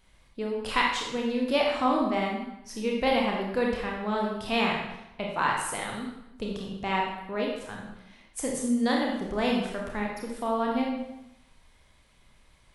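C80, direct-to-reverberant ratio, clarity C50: 5.0 dB, -1.5 dB, 2.0 dB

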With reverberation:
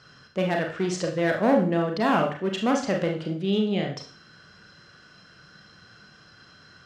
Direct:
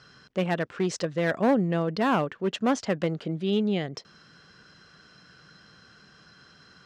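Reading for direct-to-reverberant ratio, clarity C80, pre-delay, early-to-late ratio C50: 1.5 dB, 12.5 dB, 32 ms, 8.5 dB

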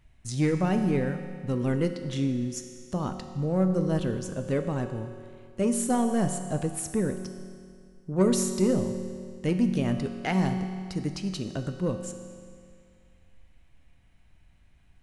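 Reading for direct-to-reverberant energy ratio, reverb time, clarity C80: 6.0 dB, 2.2 s, 8.5 dB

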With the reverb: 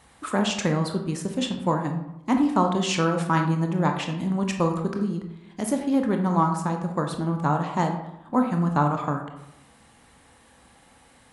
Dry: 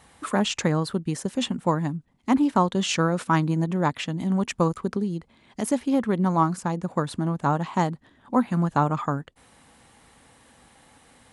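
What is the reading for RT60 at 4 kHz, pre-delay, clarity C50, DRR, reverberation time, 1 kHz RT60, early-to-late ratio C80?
0.50 s, 20 ms, 7.0 dB, 3.5 dB, 0.85 s, 0.85 s, 9.5 dB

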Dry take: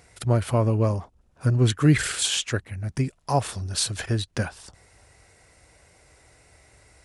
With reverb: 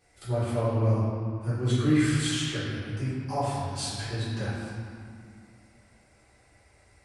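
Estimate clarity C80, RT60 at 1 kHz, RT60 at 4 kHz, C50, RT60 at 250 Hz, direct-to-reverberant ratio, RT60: -0.5 dB, 2.4 s, 1.5 s, -2.5 dB, 3.0 s, -13.5 dB, 2.3 s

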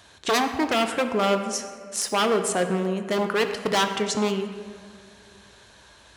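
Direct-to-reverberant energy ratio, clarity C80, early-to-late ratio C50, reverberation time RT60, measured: 6.5 dB, 9.0 dB, 8.0 dB, 2.1 s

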